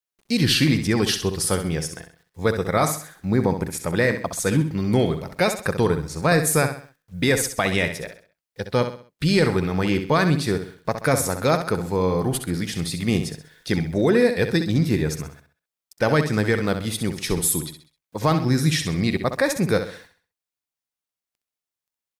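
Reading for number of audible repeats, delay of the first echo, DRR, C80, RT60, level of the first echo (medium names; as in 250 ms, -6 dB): 4, 65 ms, no reverb, no reverb, no reverb, -9.0 dB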